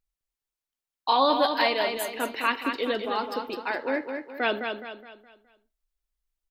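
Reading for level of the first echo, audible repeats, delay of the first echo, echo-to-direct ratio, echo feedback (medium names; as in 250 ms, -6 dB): -6.0 dB, 4, 209 ms, -5.0 dB, 40%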